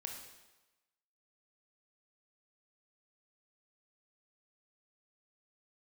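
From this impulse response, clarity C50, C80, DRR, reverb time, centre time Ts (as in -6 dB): 4.5 dB, 6.5 dB, 2.0 dB, 1.1 s, 40 ms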